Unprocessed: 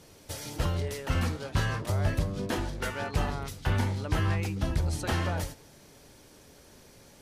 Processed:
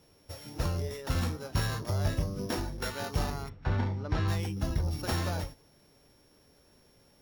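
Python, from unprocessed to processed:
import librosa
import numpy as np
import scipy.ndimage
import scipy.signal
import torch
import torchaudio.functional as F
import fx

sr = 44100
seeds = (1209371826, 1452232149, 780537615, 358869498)

y = np.r_[np.sort(x[:len(x) // 8 * 8].reshape(-1, 8), axis=1).ravel(), x[len(x) // 8 * 8:]]
y = fx.noise_reduce_blind(y, sr, reduce_db=6)
y = fx.lowpass(y, sr, hz=fx.line((3.48, 2000.0), (4.27, 3800.0)), slope=12, at=(3.48, 4.27), fade=0.02)
y = F.gain(torch.from_numpy(y), -2.0).numpy()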